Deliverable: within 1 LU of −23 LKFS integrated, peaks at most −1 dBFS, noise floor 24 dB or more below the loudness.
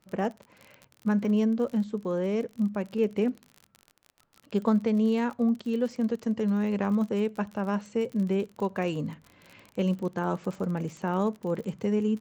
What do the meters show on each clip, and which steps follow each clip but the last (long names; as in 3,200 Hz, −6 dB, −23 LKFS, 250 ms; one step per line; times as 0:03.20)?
crackle rate 40 per second; integrated loudness −28.5 LKFS; sample peak −14.5 dBFS; target loudness −23.0 LKFS
→ click removal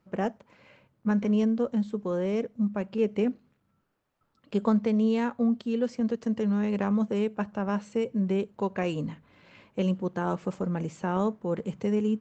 crackle rate 0 per second; integrated loudness −28.5 LKFS; sample peak −13.5 dBFS; target loudness −23.0 LKFS
→ level +5.5 dB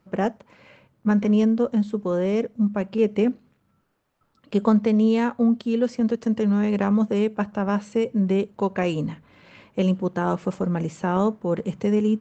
integrated loudness −23.0 LKFS; sample peak −8.0 dBFS; background noise floor −67 dBFS